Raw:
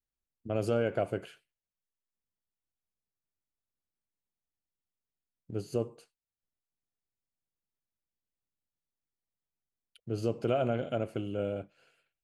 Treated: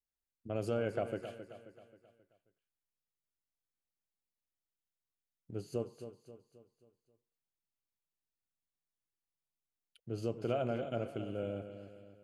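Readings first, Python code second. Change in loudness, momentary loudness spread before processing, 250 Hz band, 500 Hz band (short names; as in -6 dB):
-5.5 dB, 13 LU, -5.0 dB, -5.0 dB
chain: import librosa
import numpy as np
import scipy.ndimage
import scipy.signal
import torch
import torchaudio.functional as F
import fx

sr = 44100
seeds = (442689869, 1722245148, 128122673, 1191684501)

y = fx.echo_feedback(x, sr, ms=267, feedback_pct=46, wet_db=-11)
y = y * librosa.db_to_amplitude(-5.5)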